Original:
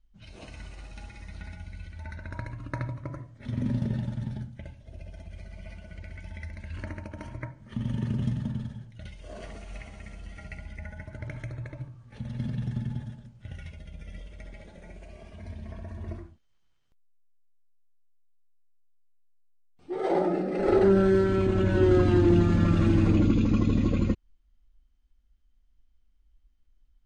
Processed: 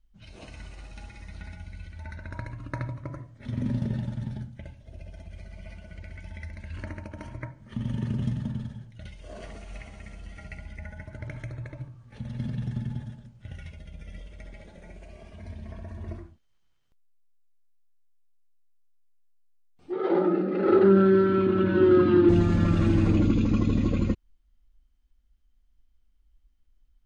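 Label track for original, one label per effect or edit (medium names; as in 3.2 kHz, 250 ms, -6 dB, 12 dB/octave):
19.920000	22.290000	cabinet simulation 150–4000 Hz, peaks and dips at 200 Hz +5 dB, 340 Hz +5 dB, 700 Hz -9 dB, 1.3 kHz +7 dB, 2.1 kHz -3 dB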